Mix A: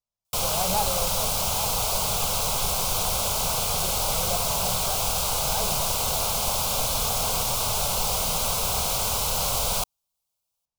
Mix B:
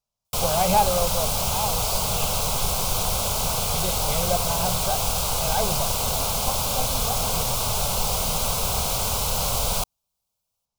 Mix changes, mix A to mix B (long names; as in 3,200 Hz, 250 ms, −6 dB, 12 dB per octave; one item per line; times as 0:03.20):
speech +8.0 dB
background: add low-shelf EQ 380 Hz +4.5 dB